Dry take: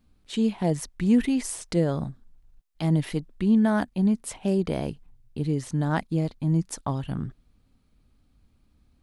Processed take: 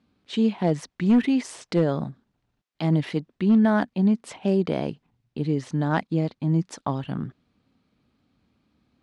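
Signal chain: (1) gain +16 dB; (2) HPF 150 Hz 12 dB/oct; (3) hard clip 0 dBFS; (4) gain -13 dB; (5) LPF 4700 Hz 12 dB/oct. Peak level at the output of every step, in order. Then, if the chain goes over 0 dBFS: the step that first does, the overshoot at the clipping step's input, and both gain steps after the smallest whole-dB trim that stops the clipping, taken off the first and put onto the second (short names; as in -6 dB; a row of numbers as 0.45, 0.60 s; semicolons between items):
+5.0, +4.0, 0.0, -13.0, -12.5 dBFS; step 1, 4.0 dB; step 1 +12 dB, step 4 -9 dB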